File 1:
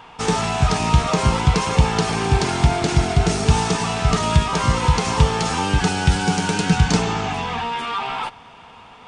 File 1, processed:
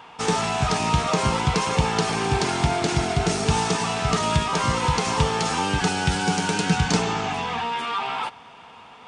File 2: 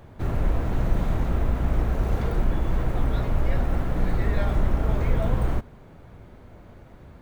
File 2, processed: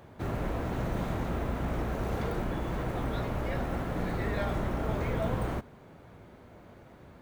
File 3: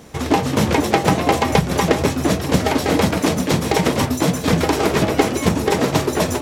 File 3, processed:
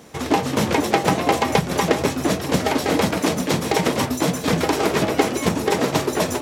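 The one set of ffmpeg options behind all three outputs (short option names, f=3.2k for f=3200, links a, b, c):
-af "highpass=f=160:p=1,volume=-1.5dB"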